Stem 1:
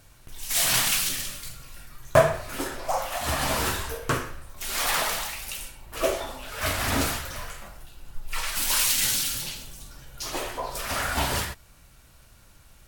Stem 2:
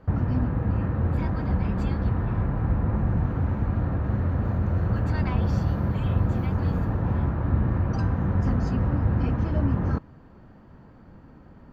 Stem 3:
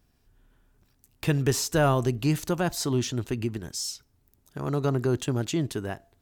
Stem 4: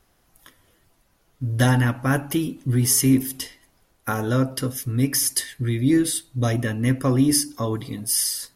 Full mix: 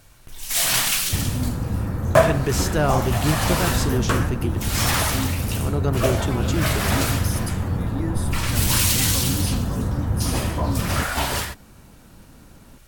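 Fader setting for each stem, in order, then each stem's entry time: +2.5, 0.0, +1.0, −12.0 decibels; 0.00, 1.05, 1.00, 2.10 seconds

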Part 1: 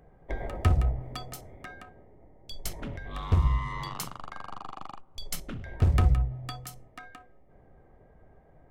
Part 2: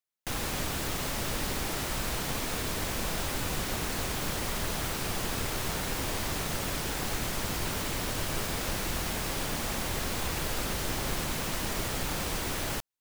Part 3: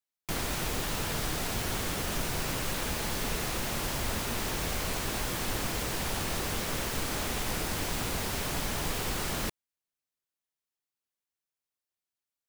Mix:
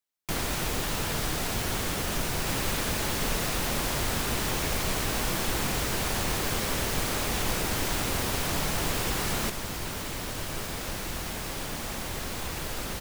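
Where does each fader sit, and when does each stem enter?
muted, −2.0 dB, +2.5 dB; muted, 2.20 s, 0.00 s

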